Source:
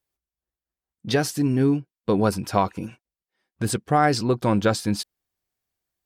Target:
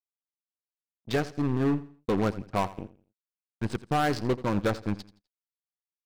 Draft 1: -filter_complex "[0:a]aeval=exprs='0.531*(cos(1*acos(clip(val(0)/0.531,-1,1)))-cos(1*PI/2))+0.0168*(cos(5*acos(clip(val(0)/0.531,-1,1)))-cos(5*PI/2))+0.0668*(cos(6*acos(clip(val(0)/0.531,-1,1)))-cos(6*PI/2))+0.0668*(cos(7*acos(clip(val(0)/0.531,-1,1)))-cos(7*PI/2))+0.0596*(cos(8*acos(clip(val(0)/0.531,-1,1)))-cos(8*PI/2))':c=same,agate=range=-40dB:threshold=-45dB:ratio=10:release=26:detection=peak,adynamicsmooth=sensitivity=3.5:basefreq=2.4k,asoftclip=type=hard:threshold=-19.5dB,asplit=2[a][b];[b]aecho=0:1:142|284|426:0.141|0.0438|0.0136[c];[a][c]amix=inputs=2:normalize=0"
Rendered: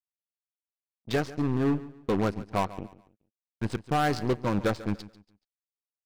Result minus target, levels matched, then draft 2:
echo 58 ms late
-filter_complex "[0:a]aeval=exprs='0.531*(cos(1*acos(clip(val(0)/0.531,-1,1)))-cos(1*PI/2))+0.0168*(cos(5*acos(clip(val(0)/0.531,-1,1)))-cos(5*PI/2))+0.0668*(cos(6*acos(clip(val(0)/0.531,-1,1)))-cos(6*PI/2))+0.0668*(cos(7*acos(clip(val(0)/0.531,-1,1)))-cos(7*PI/2))+0.0596*(cos(8*acos(clip(val(0)/0.531,-1,1)))-cos(8*PI/2))':c=same,agate=range=-40dB:threshold=-45dB:ratio=10:release=26:detection=peak,adynamicsmooth=sensitivity=3.5:basefreq=2.4k,asoftclip=type=hard:threshold=-19.5dB,asplit=2[a][b];[b]aecho=0:1:84|168|252:0.141|0.0438|0.0136[c];[a][c]amix=inputs=2:normalize=0"

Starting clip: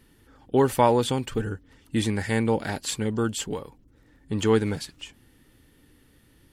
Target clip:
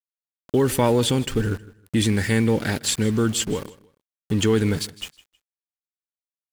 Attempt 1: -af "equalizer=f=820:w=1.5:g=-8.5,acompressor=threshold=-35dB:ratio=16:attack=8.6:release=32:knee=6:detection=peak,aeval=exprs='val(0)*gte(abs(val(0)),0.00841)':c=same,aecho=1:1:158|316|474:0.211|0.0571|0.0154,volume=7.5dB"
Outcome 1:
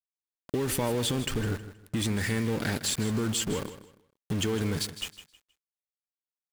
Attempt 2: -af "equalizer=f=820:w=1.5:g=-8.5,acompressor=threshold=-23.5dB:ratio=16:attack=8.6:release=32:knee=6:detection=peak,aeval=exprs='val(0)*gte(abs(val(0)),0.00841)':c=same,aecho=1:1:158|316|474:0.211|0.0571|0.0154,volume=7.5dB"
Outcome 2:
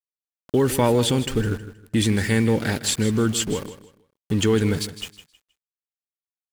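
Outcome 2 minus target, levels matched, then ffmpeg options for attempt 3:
echo-to-direct +6.5 dB
-af "equalizer=f=820:w=1.5:g=-8.5,acompressor=threshold=-23.5dB:ratio=16:attack=8.6:release=32:knee=6:detection=peak,aeval=exprs='val(0)*gte(abs(val(0)),0.00841)':c=same,aecho=1:1:158|316:0.1|0.027,volume=7.5dB"

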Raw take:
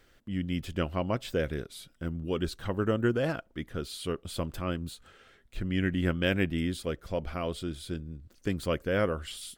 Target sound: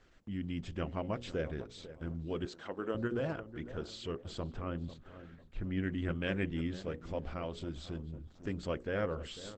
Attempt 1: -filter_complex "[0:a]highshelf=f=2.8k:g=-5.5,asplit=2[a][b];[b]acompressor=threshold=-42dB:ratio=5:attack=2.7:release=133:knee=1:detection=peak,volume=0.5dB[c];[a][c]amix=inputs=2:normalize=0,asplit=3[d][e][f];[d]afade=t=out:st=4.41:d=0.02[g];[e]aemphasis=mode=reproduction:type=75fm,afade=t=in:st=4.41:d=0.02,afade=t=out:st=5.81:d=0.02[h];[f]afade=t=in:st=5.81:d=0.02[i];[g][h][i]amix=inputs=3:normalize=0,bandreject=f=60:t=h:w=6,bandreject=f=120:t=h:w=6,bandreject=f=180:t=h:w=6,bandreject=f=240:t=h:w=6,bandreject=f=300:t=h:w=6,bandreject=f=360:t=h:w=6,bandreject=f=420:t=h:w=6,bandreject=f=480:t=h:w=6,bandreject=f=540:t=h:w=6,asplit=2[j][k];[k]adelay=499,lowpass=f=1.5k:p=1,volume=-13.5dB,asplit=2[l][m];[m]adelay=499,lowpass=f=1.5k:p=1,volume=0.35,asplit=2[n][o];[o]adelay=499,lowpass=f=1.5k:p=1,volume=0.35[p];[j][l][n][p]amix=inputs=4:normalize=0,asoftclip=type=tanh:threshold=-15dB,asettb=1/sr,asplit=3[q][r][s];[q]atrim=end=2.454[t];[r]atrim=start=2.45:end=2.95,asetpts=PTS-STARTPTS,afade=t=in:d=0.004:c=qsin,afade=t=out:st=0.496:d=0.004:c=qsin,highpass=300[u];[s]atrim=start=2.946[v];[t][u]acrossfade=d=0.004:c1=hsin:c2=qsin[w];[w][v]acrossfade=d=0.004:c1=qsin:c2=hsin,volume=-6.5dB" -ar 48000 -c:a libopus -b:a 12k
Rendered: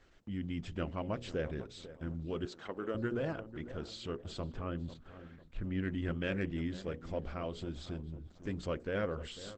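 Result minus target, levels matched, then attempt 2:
soft clip: distortion +13 dB
-filter_complex "[0:a]highshelf=f=2.8k:g=-5.5,asplit=2[a][b];[b]acompressor=threshold=-42dB:ratio=5:attack=2.7:release=133:knee=1:detection=peak,volume=0.5dB[c];[a][c]amix=inputs=2:normalize=0,asplit=3[d][e][f];[d]afade=t=out:st=4.41:d=0.02[g];[e]aemphasis=mode=reproduction:type=75fm,afade=t=in:st=4.41:d=0.02,afade=t=out:st=5.81:d=0.02[h];[f]afade=t=in:st=5.81:d=0.02[i];[g][h][i]amix=inputs=3:normalize=0,bandreject=f=60:t=h:w=6,bandreject=f=120:t=h:w=6,bandreject=f=180:t=h:w=6,bandreject=f=240:t=h:w=6,bandreject=f=300:t=h:w=6,bandreject=f=360:t=h:w=6,bandreject=f=420:t=h:w=6,bandreject=f=480:t=h:w=6,bandreject=f=540:t=h:w=6,asplit=2[j][k];[k]adelay=499,lowpass=f=1.5k:p=1,volume=-13.5dB,asplit=2[l][m];[m]adelay=499,lowpass=f=1.5k:p=1,volume=0.35,asplit=2[n][o];[o]adelay=499,lowpass=f=1.5k:p=1,volume=0.35[p];[j][l][n][p]amix=inputs=4:normalize=0,asoftclip=type=tanh:threshold=-8dB,asettb=1/sr,asplit=3[q][r][s];[q]atrim=end=2.454[t];[r]atrim=start=2.45:end=2.95,asetpts=PTS-STARTPTS,afade=t=in:d=0.004:c=qsin,afade=t=out:st=0.496:d=0.004:c=qsin,highpass=300[u];[s]atrim=start=2.946[v];[t][u]acrossfade=d=0.004:c1=hsin:c2=qsin[w];[w][v]acrossfade=d=0.004:c1=qsin:c2=hsin,volume=-6.5dB" -ar 48000 -c:a libopus -b:a 12k

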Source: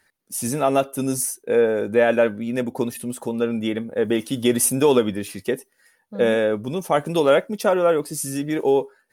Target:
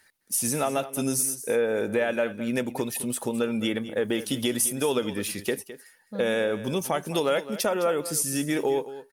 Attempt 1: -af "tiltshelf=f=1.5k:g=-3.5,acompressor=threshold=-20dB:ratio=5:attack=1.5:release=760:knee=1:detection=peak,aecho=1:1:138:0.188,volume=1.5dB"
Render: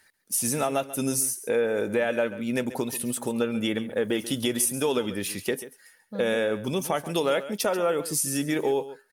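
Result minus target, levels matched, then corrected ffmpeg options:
echo 73 ms early
-af "tiltshelf=f=1.5k:g=-3.5,acompressor=threshold=-20dB:ratio=5:attack=1.5:release=760:knee=1:detection=peak,aecho=1:1:211:0.188,volume=1.5dB"

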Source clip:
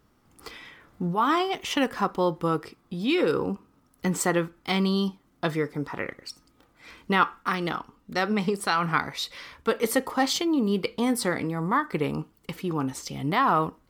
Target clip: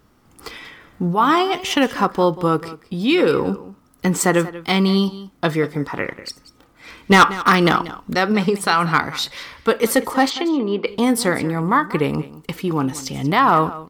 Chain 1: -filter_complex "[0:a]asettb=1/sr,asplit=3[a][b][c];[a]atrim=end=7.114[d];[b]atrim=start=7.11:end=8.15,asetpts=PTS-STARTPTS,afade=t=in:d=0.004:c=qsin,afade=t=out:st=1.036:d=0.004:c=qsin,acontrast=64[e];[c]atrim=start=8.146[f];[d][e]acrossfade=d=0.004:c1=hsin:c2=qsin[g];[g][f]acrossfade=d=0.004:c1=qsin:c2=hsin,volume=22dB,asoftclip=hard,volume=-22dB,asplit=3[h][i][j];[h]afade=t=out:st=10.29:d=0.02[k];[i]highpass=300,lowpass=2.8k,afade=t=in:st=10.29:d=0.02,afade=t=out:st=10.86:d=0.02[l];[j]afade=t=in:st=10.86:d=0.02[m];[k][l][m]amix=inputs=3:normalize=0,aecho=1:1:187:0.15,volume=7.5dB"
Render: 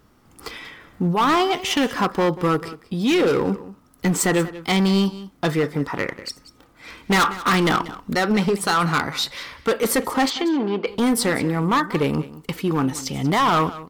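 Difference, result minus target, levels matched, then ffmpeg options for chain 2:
overloaded stage: distortion +9 dB
-filter_complex "[0:a]asettb=1/sr,asplit=3[a][b][c];[a]atrim=end=7.114[d];[b]atrim=start=7.11:end=8.15,asetpts=PTS-STARTPTS,afade=t=in:d=0.004:c=qsin,afade=t=out:st=1.036:d=0.004:c=qsin,acontrast=64[e];[c]atrim=start=8.146[f];[d][e]acrossfade=d=0.004:c1=hsin:c2=qsin[g];[g][f]acrossfade=d=0.004:c1=qsin:c2=hsin,volume=12.5dB,asoftclip=hard,volume=-12.5dB,asplit=3[h][i][j];[h]afade=t=out:st=10.29:d=0.02[k];[i]highpass=300,lowpass=2.8k,afade=t=in:st=10.29:d=0.02,afade=t=out:st=10.86:d=0.02[l];[j]afade=t=in:st=10.86:d=0.02[m];[k][l][m]amix=inputs=3:normalize=0,aecho=1:1:187:0.15,volume=7.5dB"

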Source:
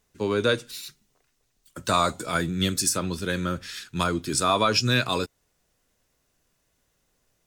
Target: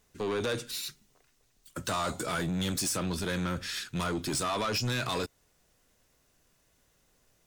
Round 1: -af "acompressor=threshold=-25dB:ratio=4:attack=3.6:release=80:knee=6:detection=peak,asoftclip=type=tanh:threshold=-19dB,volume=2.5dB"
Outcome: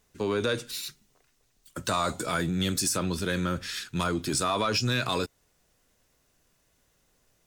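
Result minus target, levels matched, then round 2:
soft clip: distortion -12 dB
-af "acompressor=threshold=-25dB:ratio=4:attack=3.6:release=80:knee=6:detection=peak,asoftclip=type=tanh:threshold=-29dB,volume=2.5dB"

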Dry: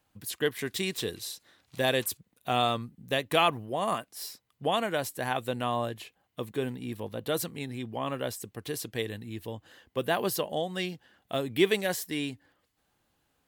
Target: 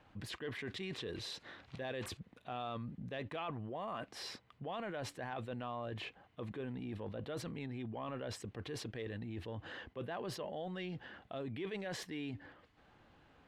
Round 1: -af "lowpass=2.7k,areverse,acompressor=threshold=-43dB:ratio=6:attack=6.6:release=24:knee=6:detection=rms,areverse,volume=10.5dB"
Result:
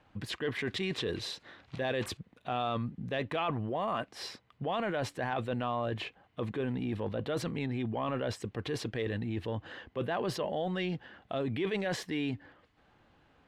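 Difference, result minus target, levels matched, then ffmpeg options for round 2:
compressor: peak gain reduction -9 dB
-af "lowpass=2.7k,areverse,acompressor=threshold=-54dB:ratio=6:attack=6.6:release=24:knee=6:detection=rms,areverse,volume=10.5dB"

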